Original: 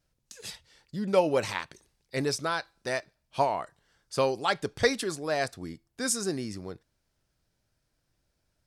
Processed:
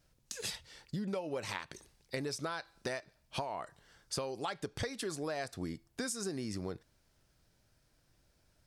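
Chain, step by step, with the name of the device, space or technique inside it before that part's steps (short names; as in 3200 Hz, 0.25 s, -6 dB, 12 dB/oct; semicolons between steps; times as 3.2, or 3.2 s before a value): serial compression, peaks first (compressor 4:1, threshold -35 dBFS, peak gain reduction 15.5 dB; compressor 3:1, threshold -41 dBFS, peak gain reduction 9 dB); gain +5 dB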